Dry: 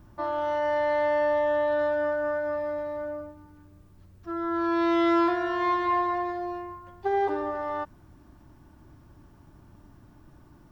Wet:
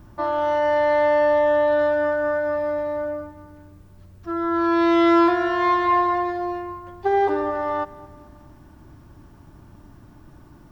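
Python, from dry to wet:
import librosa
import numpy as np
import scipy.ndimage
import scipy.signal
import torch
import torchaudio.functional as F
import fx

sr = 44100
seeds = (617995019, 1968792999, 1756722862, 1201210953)

y = fx.echo_feedback(x, sr, ms=216, feedback_pct=51, wet_db=-21.5)
y = y * librosa.db_to_amplitude(6.0)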